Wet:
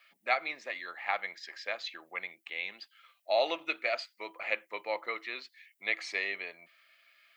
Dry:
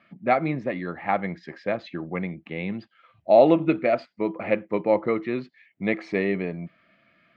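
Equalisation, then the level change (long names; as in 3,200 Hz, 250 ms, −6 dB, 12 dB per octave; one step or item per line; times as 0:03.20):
high-pass filter 570 Hz 12 dB per octave
spectral tilt +4 dB per octave
high-shelf EQ 3,400 Hz +11.5 dB
−8.0 dB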